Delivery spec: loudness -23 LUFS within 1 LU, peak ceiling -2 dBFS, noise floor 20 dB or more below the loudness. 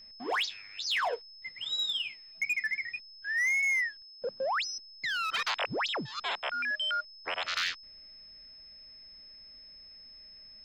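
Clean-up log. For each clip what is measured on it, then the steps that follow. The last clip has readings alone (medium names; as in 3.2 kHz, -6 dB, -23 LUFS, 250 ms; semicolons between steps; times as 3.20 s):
clipped samples 1.0%; clipping level -25.5 dBFS; steady tone 5.2 kHz; tone level -49 dBFS; loudness -31.5 LUFS; peak level -25.5 dBFS; loudness target -23.0 LUFS
-> clip repair -25.5 dBFS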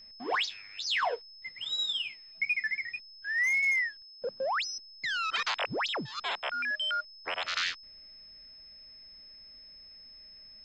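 clipped samples 0.0%; steady tone 5.2 kHz; tone level -49 dBFS
-> band-stop 5.2 kHz, Q 30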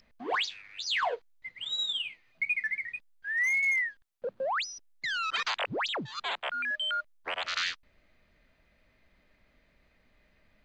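steady tone not found; loudness -31.0 LUFS; peak level -19.0 dBFS; loudness target -23.0 LUFS
-> trim +8 dB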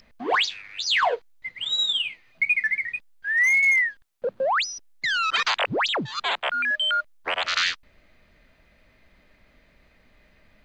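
loudness -23.0 LUFS; peak level -11.0 dBFS; noise floor -60 dBFS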